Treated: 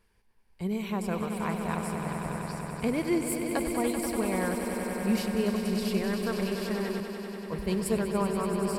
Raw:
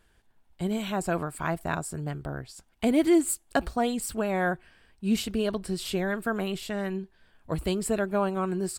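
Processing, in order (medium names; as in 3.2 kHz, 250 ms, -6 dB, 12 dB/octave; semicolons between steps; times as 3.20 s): rippled EQ curve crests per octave 0.86, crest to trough 8 dB; on a send: echo with a slow build-up 96 ms, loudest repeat 5, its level -9 dB; 7.00–7.97 s: on the sum: three bands expanded up and down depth 70%; trim -5 dB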